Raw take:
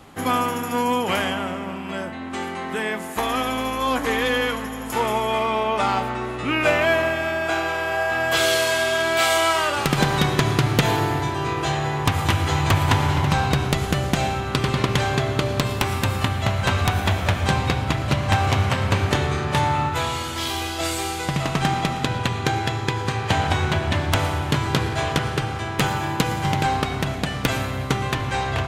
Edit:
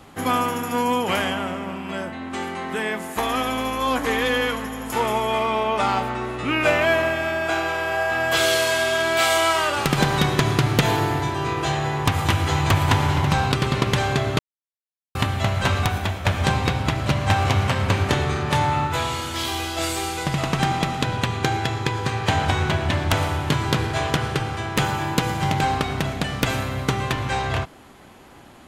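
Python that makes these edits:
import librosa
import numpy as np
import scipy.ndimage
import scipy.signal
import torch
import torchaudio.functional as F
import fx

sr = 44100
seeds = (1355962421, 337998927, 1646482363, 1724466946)

y = fx.edit(x, sr, fx.cut(start_s=13.52, length_s=1.02),
    fx.silence(start_s=15.41, length_s=0.76),
    fx.fade_out_to(start_s=16.76, length_s=0.51, floor_db=-7.5), tone=tone)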